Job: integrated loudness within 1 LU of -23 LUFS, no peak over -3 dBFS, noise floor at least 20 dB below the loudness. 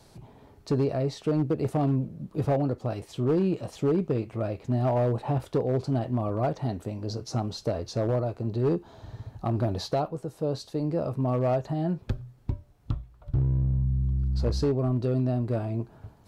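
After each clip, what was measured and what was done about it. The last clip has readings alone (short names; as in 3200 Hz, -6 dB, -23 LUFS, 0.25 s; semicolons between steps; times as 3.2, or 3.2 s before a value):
clipped 1.3%; flat tops at -19.0 dBFS; loudness -28.5 LUFS; peak -19.0 dBFS; loudness target -23.0 LUFS
-> clip repair -19 dBFS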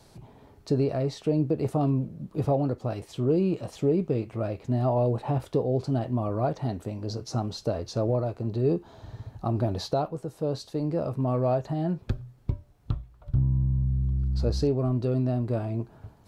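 clipped 0.0%; loudness -28.0 LUFS; peak -14.0 dBFS; loudness target -23.0 LUFS
-> gain +5 dB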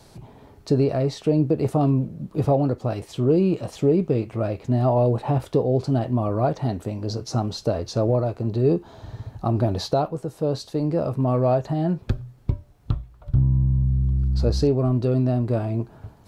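loudness -23.0 LUFS; peak -9.0 dBFS; noise floor -51 dBFS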